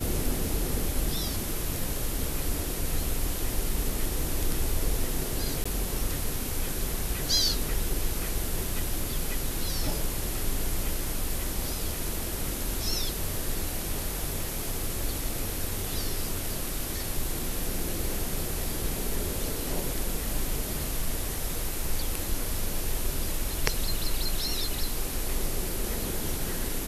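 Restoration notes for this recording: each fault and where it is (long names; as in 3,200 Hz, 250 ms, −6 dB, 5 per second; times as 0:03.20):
0:05.64–0:05.66: drop-out 15 ms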